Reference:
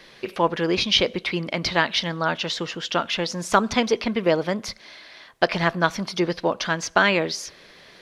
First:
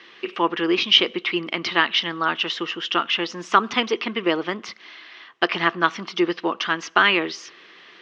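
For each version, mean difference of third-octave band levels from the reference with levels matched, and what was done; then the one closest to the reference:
5.5 dB: loudspeaker in its box 250–5,600 Hz, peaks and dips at 340 Hz +7 dB, 580 Hz −9 dB, 1,200 Hz +8 dB, 1,900 Hz +4 dB, 2,900 Hz +9 dB, 4,500 Hz −5 dB
level −1.5 dB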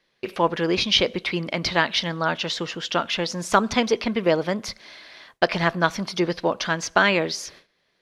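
1.0 dB: noise gate with hold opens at −35 dBFS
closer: second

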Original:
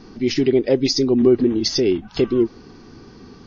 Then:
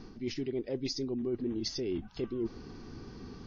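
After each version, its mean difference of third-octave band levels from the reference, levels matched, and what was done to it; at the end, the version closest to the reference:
4.5 dB: low-shelf EQ 120 Hz +7.5 dB
reversed playback
downward compressor 5 to 1, threshold −27 dBFS, peak gain reduction 16.5 dB
reversed playback
level −6 dB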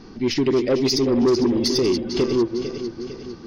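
6.0 dB: feedback delay that plays each chunk backwards 226 ms, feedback 68%, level −9 dB
soft clipping −12.5 dBFS, distortion −14 dB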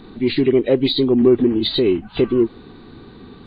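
1.5 dB: hearing-aid frequency compression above 2,400 Hz 1.5 to 1
in parallel at −11.5 dB: soft clipping −15.5 dBFS, distortion −12 dB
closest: third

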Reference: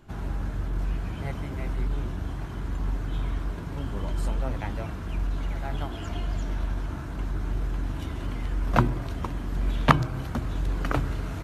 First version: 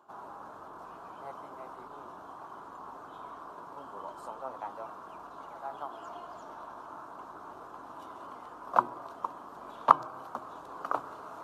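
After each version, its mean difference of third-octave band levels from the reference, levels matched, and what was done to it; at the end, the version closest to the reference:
10.0 dB: high-pass filter 610 Hz 12 dB per octave
high shelf with overshoot 1,500 Hz −10 dB, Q 3
reversed playback
upward compression, threshold −40 dBFS
reversed playback
level −3 dB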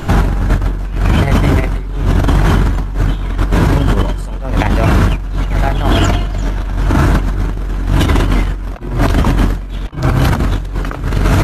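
5.5 dB: mains-hum notches 60/120/180/240/300/360 Hz
compressor whose output falls as the input rises −34 dBFS, ratio −0.5
boost into a limiter +25.5 dB
level −1 dB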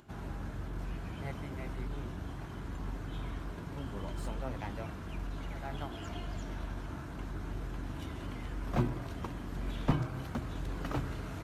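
2.0 dB: high-pass filter 89 Hz 6 dB per octave
upward compression, threshold −51 dBFS
slew-rate limiting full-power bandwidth 51 Hz
level −5.5 dB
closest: third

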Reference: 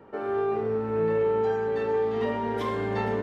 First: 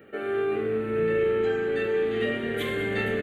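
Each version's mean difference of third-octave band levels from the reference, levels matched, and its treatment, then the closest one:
4.0 dB: spectral tilt +2.5 dB per octave
phaser with its sweep stopped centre 2,300 Hz, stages 4
on a send: echo with shifted repeats 201 ms, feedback 44%, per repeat −84 Hz, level −14 dB
on the sum: level +6 dB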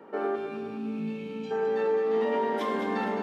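5.0 dB: high-pass filter 190 Hz 24 dB per octave
gain on a spectral selection 0:00.35–0:01.51, 300–2,200 Hz −20 dB
in parallel at 0 dB: compressor whose output falls as the input rises −31 dBFS
on the sum: delay that swaps between a low-pass and a high-pass 105 ms, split 830 Hz, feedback 69%, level −4 dB
level −5.5 dB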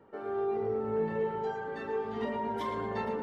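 2.0 dB: reverb reduction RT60 1.9 s
notch filter 2,500 Hz, Q 11
automatic gain control gain up to 4 dB
feedback echo with a low-pass in the loop 114 ms, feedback 71%, low-pass 2,300 Hz, level −4 dB
level −8 dB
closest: third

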